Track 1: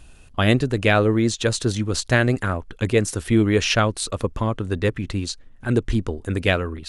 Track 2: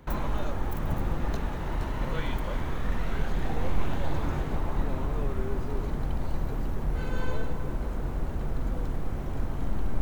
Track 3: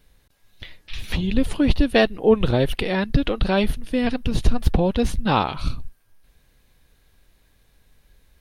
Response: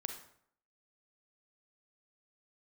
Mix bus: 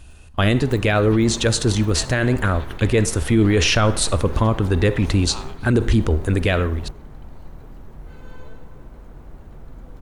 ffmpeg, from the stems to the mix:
-filter_complex "[0:a]equalizer=frequency=74:width_type=o:width=0.39:gain=9,dynaudnorm=framelen=530:gausssize=3:maxgain=11.5dB,volume=-1dB,asplit=3[link_01][link_02][link_03];[link_02]volume=-7dB[link_04];[1:a]volume=-3.5dB,asplit=2[link_05][link_06];[link_06]volume=-6dB[link_07];[2:a]highpass=960,volume=-13dB[link_08];[link_03]apad=whole_len=441795[link_09];[link_05][link_09]sidechaingate=range=-31dB:threshold=-37dB:ratio=16:detection=peak[link_10];[3:a]atrim=start_sample=2205[link_11];[link_04][link_11]afir=irnorm=-1:irlink=0[link_12];[link_07]aecho=0:1:1115:1[link_13];[link_01][link_10][link_08][link_12][link_13]amix=inputs=5:normalize=0,alimiter=limit=-8.5dB:level=0:latency=1:release=11"

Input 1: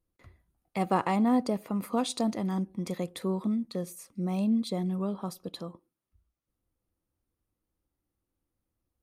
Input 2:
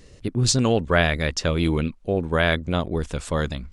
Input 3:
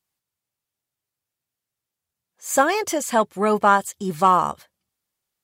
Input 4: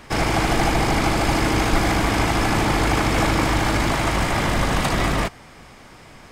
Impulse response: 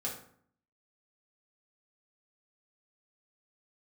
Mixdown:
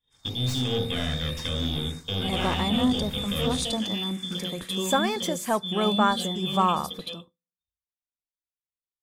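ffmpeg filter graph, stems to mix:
-filter_complex "[0:a]highshelf=frequency=2100:gain=9,bandreject=frequency=45.87:width_type=h:width=4,bandreject=frequency=91.74:width_type=h:width=4,bandreject=frequency=137.61:width_type=h:width=4,bandreject=frequency=183.48:width_type=h:width=4,bandreject=frequency=229.35:width_type=h:width=4,bandreject=frequency=275.22:width_type=h:width=4,adelay=1450,volume=-0.5dB,asplit=3[link_01][link_02][link_03];[link_02]volume=-11.5dB[link_04];[link_03]volume=-3.5dB[link_05];[1:a]aeval=exprs='(tanh(14.1*val(0)+0.7)-tanh(0.7))/14.1':channel_layout=same,volume=0.5dB,asplit=3[link_06][link_07][link_08];[link_07]volume=-10dB[link_09];[link_08]volume=-19dB[link_10];[2:a]adelay=2350,volume=-7.5dB,asplit=2[link_11][link_12];[link_12]volume=-23dB[link_13];[3:a]aderivative,asplit=2[link_14][link_15];[link_15]afreqshift=-2.2[link_16];[link_14][link_16]amix=inputs=2:normalize=1,volume=-15dB,asplit=2[link_17][link_18];[link_18]volume=-7dB[link_19];[link_01][link_06]amix=inputs=2:normalize=0,lowpass=frequency=3100:width_type=q:width=0.5098,lowpass=frequency=3100:width_type=q:width=0.6013,lowpass=frequency=3100:width_type=q:width=0.9,lowpass=frequency=3100:width_type=q:width=2.563,afreqshift=-3700,acompressor=threshold=-30dB:ratio=6,volume=0dB[link_20];[4:a]atrim=start_sample=2205[link_21];[link_04][link_09][link_13]amix=inputs=3:normalize=0[link_22];[link_22][link_21]afir=irnorm=-1:irlink=0[link_23];[link_05][link_10][link_19]amix=inputs=3:normalize=0,aecho=0:1:78:1[link_24];[link_11][link_17][link_20][link_23][link_24]amix=inputs=5:normalize=0,agate=range=-33dB:threshold=-37dB:ratio=3:detection=peak,lowshelf=frequency=180:gain=8"

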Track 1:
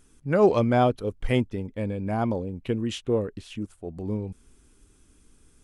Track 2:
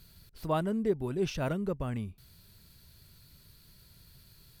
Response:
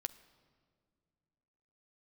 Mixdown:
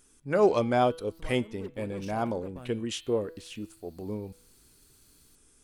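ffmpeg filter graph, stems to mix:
-filter_complex "[0:a]volume=-2dB,asplit=2[link_01][link_02];[1:a]lowshelf=frequency=350:gain=5,aeval=exprs='0.158*(cos(1*acos(clip(val(0)/0.158,-1,1)))-cos(1*PI/2))+0.0126*(cos(8*acos(clip(val(0)/0.158,-1,1)))-cos(8*PI/2))':channel_layout=same,adelay=750,volume=-8.5dB[link_03];[link_02]apad=whole_len=235944[link_04];[link_03][link_04]sidechaincompress=threshold=-30dB:ratio=8:attack=46:release=767[link_05];[link_01][link_05]amix=inputs=2:normalize=0,bass=frequency=250:gain=-7,treble=frequency=4000:gain=5,bandreject=frequency=163.6:width_type=h:width=4,bandreject=frequency=327.2:width_type=h:width=4,bandreject=frequency=490.8:width_type=h:width=4,bandreject=frequency=654.4:width_type=h:width=4,bandreject=frequency=818:width_type=h:width=4,bandreject=frequency=981.6:width_type=h:width=4,bandreject=frequency=1145.2:width_type=h:width=4,bandreject=frequency=1308.8:width_type=h:width=4,bandreject=frequency=1472.4:width_type=h:width=4,bandreject=frequency=1636:width_type=h:width=4,bandreject=frequency=1799.6:width_type=h:width=4,bandreject=frequency=1963.2:width_type=h:width=4,bandreject=frequency=2126.8:width_type=h:width=4,bandreject=frequency=2290.4:width_type=h:width=4,bandreject=frequency=2454:width_type=h:width=4,bandreject=frequency=2617.6:width_type=h:width=4,bandreject=frequency=2781.2:width_type=h:width=4,bandreject=frequency=2944.8:width_type=h:width=4,bandreject=frequency=3108.4:width_type=h:width=4,bandreject=frequency=3272:width_type=h:width=4,bandreject=frequency=3435.6:width_type=h:width=4,bandreject=frequency=3599.2:width_type=h:width=4,bandreject=frequency=3762.8:width_type=h:width=4,bandreject=frequency=3926.4:width_type=h:width=4,bandreject=frequency=4090:width_type=h:width=4,bandreject=frequency=4253.6:width_type=h:width=4"

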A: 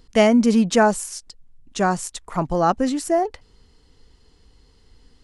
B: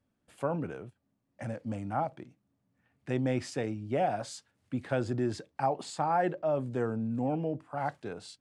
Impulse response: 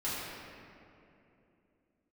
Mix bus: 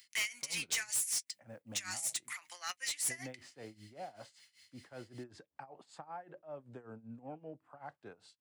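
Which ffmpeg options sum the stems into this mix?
-filter_complex "[0:a]highpass=frequency=2100:width_type=q:width=4.9,aemphasis=mode=production:type=riaa,flanger=delay=5.5:depth=3.5:regen=58:speed=0.74:shape=sinusoidal,volume=-2.5dB[link_01];[1:a]equalizer=frequency=1200:width_type=o:width=2.6:gain=6.5,acompressor=threshold=-26dB:ratio=6,volume=-13.5dB[link_02];[link_01][link_02]amix=inputs=2:normalize=0,acrossover=split=300|3000[link_03][link_04][link_05];[link_04]acompressor=threshold=-37dB:ratio=4[link_06];[link_03][link_06][link_05]amix=inputs=3:normalize=0,tremolo=f=5.2:d=0.87,asoftclip=type=tanh:threshold=-29.5dB"

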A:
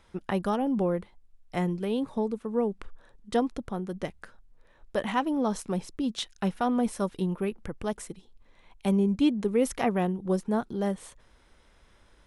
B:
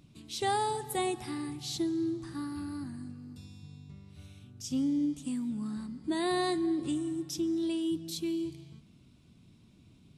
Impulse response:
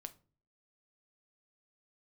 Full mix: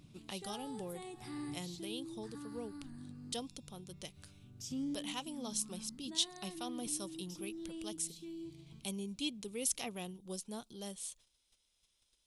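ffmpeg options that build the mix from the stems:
-filter_complex "[0:a]agate=range=-10dB:threshold=-55dB:ratio=16:detection=peak,aexciter=amount=12:drive=2.1:freq=2600,volume=-18.5dB,asplit=3[link_01][link_02][link_03];[link_02]volume=-18.5dB[link_04];[1:a]alimiter=level_in=8dB:limit=-24dB:level=0:latency=1:release=135,volume=-8dB,volume=-2.5dB,asplit=2[link_05][link_06];[link_06]volume=-7.5dB[link_07];[link_03]apad=whole_len=448923[link_08];[link_05][link_08]sidechaincompress=threshold=-56dB:ratio=4:attack=6.8:release=612[link_09];[2:a]atrim=start_sample=2205[link_10];[link_04][link_07]amix=inputs=2:normalize=0[link_11];[link_11][link_10]afir=irnorm=-1:irlink=0[link_12];[link_01][link_09][link_12]amix=inputs=3:normalize=0"

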